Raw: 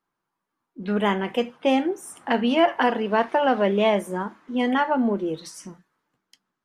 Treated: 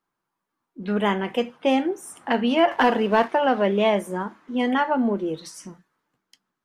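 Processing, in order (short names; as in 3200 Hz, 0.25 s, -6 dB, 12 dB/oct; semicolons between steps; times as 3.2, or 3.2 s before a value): 2.71–3.28 sample leveller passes 1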